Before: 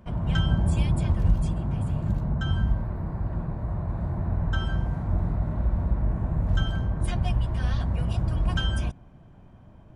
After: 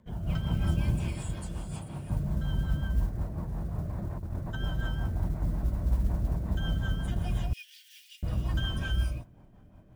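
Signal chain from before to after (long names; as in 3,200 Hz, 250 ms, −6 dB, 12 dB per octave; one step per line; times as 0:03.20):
rippled gain that drifts along the octave scale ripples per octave 1, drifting −2 Hz, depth 9 dB
reverb whose tail is shaped and stops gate 340 ms rising, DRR −0.5 dB
rotating-speaker cabinet horn 5.5 Hz
0:01.08–0:02.10: spectral tilt +2.5 dB per octave
0:03.85–0:04.56: compressor whose output falls as the input rises −26 dBFS, ratio −0.5
noise that follows the level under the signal 33 dB
0:07.53–0:08.23: Butterworth high-pass 2,200 Hz 48 dB per octave
level −7 dB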